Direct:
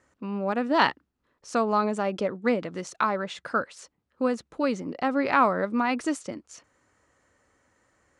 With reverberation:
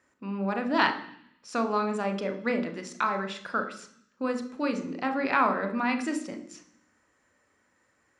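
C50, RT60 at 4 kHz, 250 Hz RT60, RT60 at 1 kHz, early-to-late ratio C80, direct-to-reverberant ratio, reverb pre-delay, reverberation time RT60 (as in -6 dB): 11.0 dB, 0.85 s, 0.95 s, 0.65 s, 14.5 dB, 6.5 dB, 29 ms, 0.65 s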